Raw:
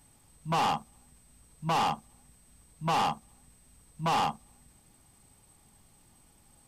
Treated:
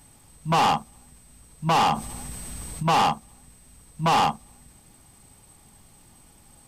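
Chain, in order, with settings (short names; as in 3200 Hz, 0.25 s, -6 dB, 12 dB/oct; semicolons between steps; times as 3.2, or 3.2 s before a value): in parallel at -9 dB: overloaded stage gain 27 dB; 1.89–2.83 on the sum: fast leveller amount 50%; gain +5 dB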